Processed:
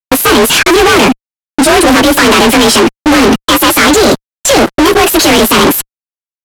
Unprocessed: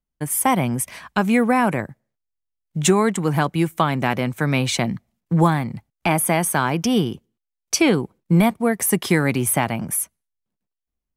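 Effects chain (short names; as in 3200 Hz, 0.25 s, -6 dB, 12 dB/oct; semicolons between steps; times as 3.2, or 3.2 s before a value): inharmonic rescaling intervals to 90%; gate -41 dBFS, range -25 dB; EQ curve 170 Hz 0 dB, 1100 Hz +1 dB, 5300 Hz +8 dB; compressor 6:1, threshold -22 dBFS, peak gain reduction 10.5 dB; fuzz box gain 52 dB, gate -60 dBFS; air absorption 88 m; speed mistake 45 rpm record played at 78 rpm; gain +8.5 dB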